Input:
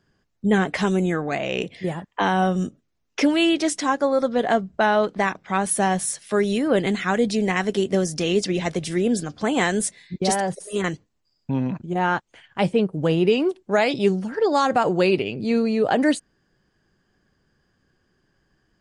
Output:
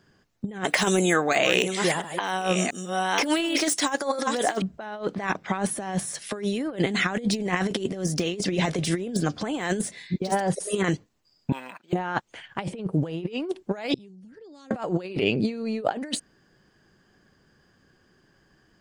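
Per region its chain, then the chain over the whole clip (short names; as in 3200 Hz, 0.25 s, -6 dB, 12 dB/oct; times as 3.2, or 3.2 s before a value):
0.64–4.62 reverse delay 0.689 s, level -10 dB + RIAA curve recording
11.52–11.93 HPF 1300 Hz + decimation joined by straight lines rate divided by 4×
13.94–14.71 passive tone stack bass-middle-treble 10-0-1 + compressor 20:1, threshold -49 dBFS
whole clip: de-esser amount 65%; low shelf 68 Hz -8.5 dB; negative-ratio compressor -26 dBFS, ratio -0.5; gain +1.5 dB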